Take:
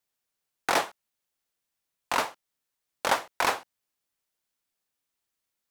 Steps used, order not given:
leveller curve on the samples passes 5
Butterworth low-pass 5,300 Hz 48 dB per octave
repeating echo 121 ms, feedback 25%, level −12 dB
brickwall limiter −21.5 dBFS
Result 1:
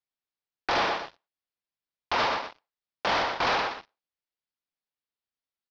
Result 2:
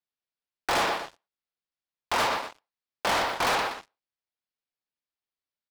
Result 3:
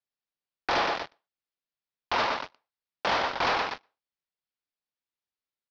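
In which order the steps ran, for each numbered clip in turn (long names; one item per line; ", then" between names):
brickwall limiter, then repeating echo, then leveller curve on the samples, then Butterworth low-pass
Butterworth low-pass, then brickwall limiter, then repeating echo, then leveller curve on the samples
repeating echo, then leveller curve on the samples, then brickwall limiter, then Butterworth low-pass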